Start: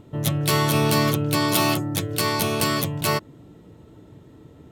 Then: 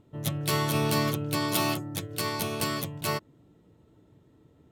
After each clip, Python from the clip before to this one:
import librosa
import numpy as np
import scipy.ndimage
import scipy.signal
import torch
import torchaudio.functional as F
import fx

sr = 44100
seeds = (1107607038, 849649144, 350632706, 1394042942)

y = fx.upward_expand(x, sr, threshold_db=-31.0, expansion=1.5)
y = y * librosa.db_to_amplitude(-5.5)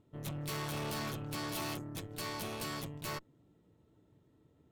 y = fx.tube_stage(x, sr, drive_db=33.0, bias=0.8)
y = y * librosa.db_to_amplitude(-3.0)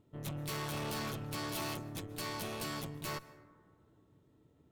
y = fx.rev_plate(x, sr, seeds[0], rt60_s=2.0, hf_ratio=0.25, predelay_ms=115, drr_db=16.5)